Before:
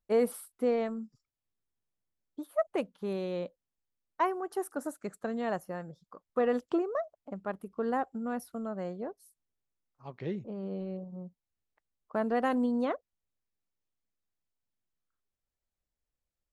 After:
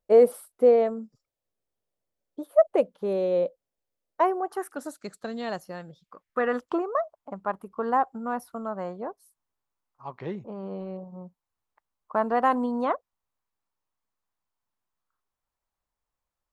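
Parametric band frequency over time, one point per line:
parametric band +13 dB 1.1 octaves
0:04.38 550 Hz
0:04.85 4,300 Hz
0:05.69 4,300 Hz
0:06.75 1,000 Hz

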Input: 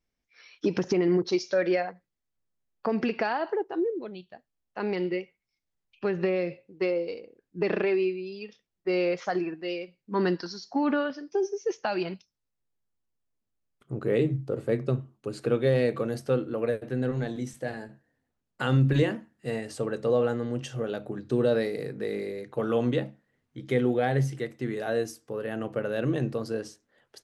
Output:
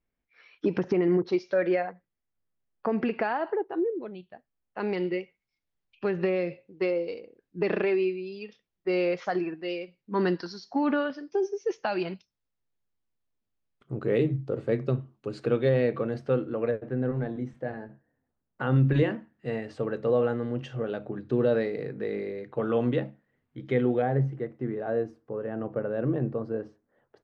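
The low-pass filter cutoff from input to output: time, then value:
2,500 Hz
from 0:04.79 4,600 Hz
from 0:15.69 2,800 Hz
from 0:16.71 1,600 Hz
from 0:18.76 2,800 Hz
from 0:24.02 1,200 Hz

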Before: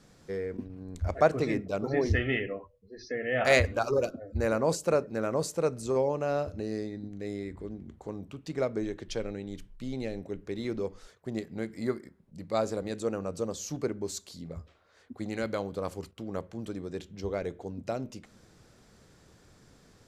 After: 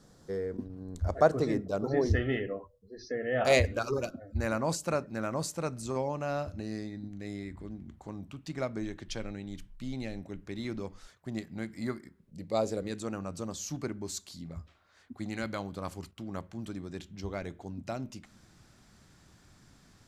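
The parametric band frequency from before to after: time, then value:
parametric band −11 dB 0.61 octaves
0:03.38 2,400 Hz
0:04.04 450 Hz
0:12.01 450 Hz
0:12.60 1,700 Hz
0:13.01 470 Hz

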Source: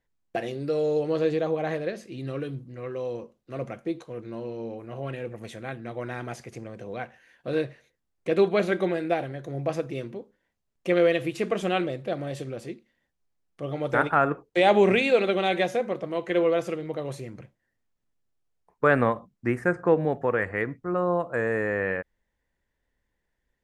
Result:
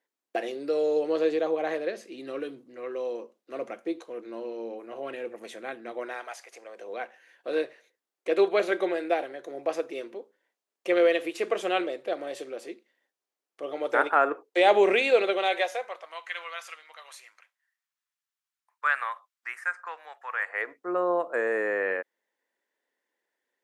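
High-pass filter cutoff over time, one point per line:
high-pass filter 24 dB per octave
0:05.99 290 Hz
0:06.35 720 Hz
0:06.96 340 Hz
0:15.20 340 Hz
0:16.33 1,100 Hz
0:20.27 1,100 Hz
0:20.90 320 Hz

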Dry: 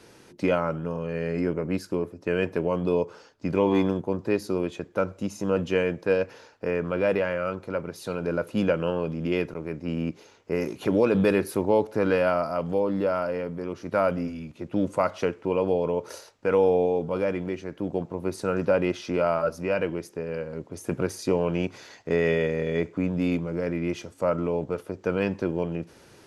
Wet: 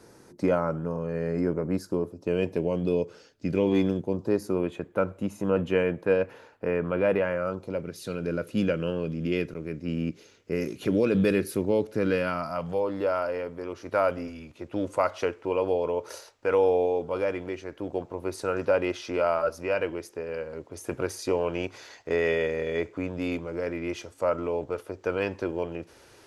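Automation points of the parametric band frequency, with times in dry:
parametric band −11.5 dB 1 octave
0:01.74 2,900 Hz
0:02.92 990 Hz
0:04.02 990 Hz
0:04.58 5,400 Hz
0:07.22 5,400 Hz
0:07.89 880 Hz
0:12.15 880 Hz
0:12.93 180 Hz

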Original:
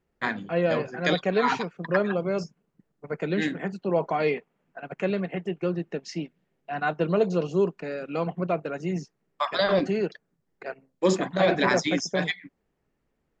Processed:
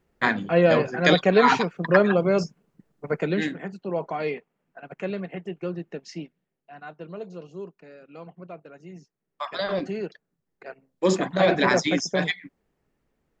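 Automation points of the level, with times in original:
0:03.11 +6 dB
0:03.62 −3.5 dB
0:06.22 −3.5 dB
0:06.80 −14 dB
0:09.00 −14 dB
0:09.46 −4.5 dB
0:10.68 −4.5 dB
0:11.17 +2 dB

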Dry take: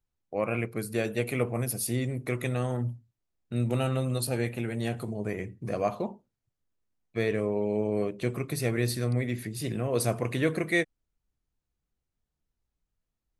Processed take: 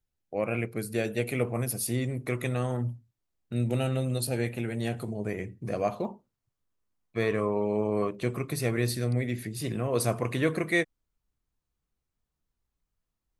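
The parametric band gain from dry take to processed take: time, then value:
parametric band 1,100 Hz 0.47 octaves
−5 dB
from 0:01.45 +1.5 dB
from 0:03.53 −9 dB
from 0:04.38 −2 dB
from 0:06.05 +5.5 dB
from 0:07.22 +13.5 dB
from 0:08.15 +3.5 dB
from 0:08.90 −5 dB
from 0:09.57 +4 dB

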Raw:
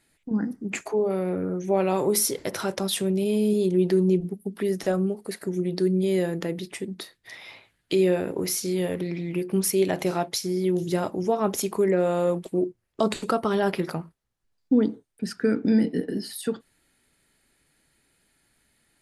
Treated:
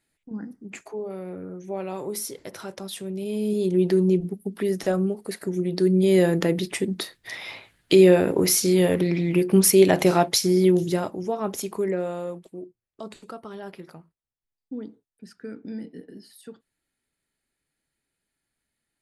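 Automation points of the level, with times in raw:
0:03.03 −8.5 dB
0:03.77 +1 dB
0:05.69 +1 dB
0:06.28 +7 dB
0:10.64 +7 dB
0:11.18 −3.5 dB
0:11.91 −3.5 dB
0:12.66 −14.5 dB

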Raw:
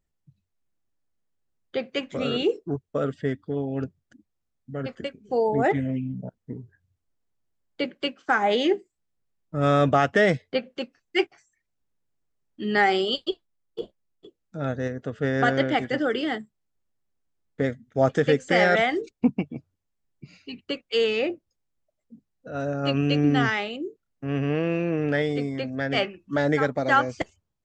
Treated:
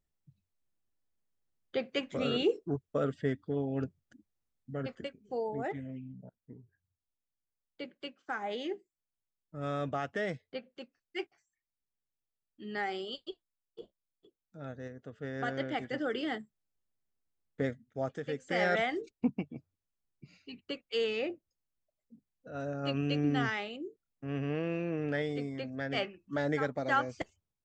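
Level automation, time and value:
0:04.74 −5 dB
0:05.71 −15 dB
0:15.25 −15 dB
0:16.29 −7.5 dB
0:17.69 −7.5 dB
0:18.22 −18 dB
0:18.67 −9 dB

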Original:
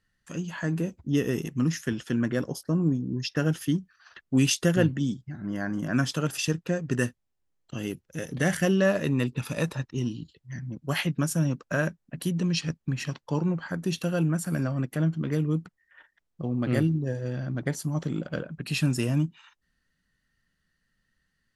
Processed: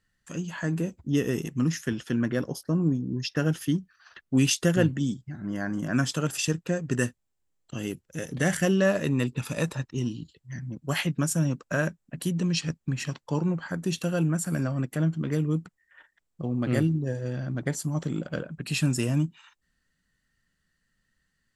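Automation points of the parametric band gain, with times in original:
parametric band 7,600 Hz 0.3 octaves
0:01.51 +5.5 dB
0:02.37 −5 dB
0:02.86 +1 dB
0:04.45 +1 dB
0:04.88 +7.5 dB

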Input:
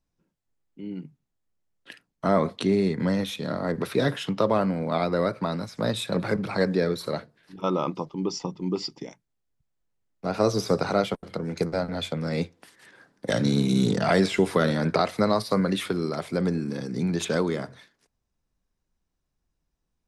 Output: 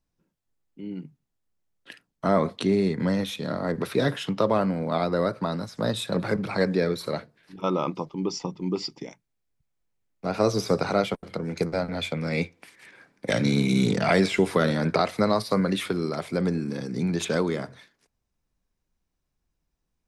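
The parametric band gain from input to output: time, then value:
parametric band 2,300 Hz 0.26 octaves
0:04.62 0 dB
0:05.19 −6.5 dB
0:05.92 −6.5 dB
0:06.62 +4 dB
0:11.69 +4 dB
0:12.24 +13 dB
0:13.85 +13 dB
0:14.47 +2.5 dB

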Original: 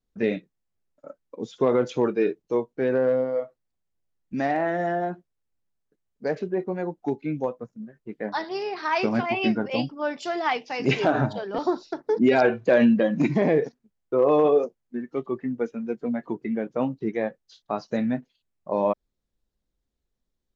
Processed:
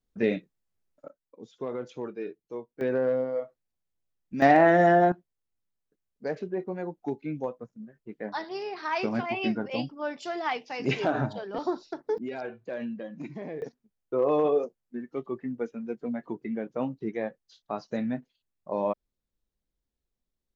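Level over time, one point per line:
−1 dB
from 0:01.08 −13 dB
from 0:02.81 −4 dB
from 0:04.42 +6.5 dB
from 0:05.12 −5 dB
from 0:12.18 −17 dB
from 0:13.62 −5 dB

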